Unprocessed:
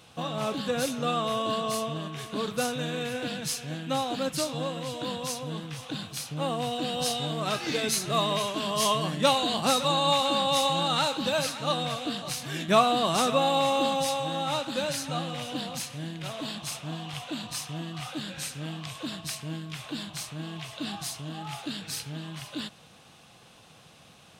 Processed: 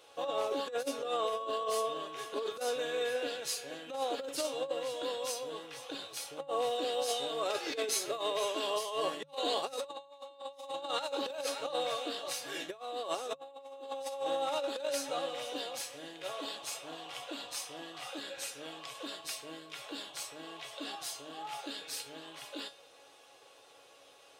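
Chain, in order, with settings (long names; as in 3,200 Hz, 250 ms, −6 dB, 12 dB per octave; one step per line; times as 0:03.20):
low shelf with overshoot 290 Hz −13 dB, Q 3
tuned comb filter 280 Hz, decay 0.26 s, harmonics all, mix 80%
dynamic equaliser 440 Hz, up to +3 dB, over −40 dBFS, Q 0.74
compressor whose output falls as the input rises −36 dBFS, ratio −0.5
mains-hum notches 50/100/150 Hz
level +1 dB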